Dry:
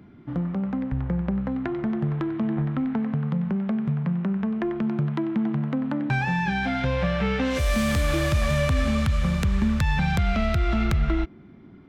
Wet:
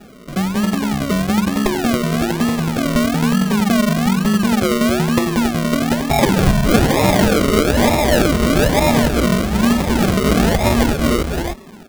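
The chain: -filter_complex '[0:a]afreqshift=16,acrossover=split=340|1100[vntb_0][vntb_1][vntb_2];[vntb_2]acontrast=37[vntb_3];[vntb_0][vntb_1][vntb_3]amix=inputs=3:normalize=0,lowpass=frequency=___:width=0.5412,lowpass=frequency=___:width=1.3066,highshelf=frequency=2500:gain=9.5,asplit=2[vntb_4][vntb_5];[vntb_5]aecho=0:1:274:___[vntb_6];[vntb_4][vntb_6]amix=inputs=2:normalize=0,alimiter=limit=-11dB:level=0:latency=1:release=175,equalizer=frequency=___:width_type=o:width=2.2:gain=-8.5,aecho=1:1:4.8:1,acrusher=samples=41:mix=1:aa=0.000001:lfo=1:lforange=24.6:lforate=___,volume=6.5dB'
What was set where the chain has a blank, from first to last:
3200, 3200, 0.631, 91, 1.1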